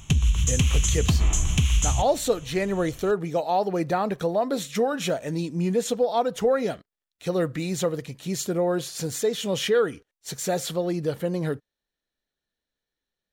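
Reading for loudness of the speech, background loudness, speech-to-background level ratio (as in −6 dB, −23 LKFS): −26.5 LKFS, −23.0 LKFS, −3.5 dB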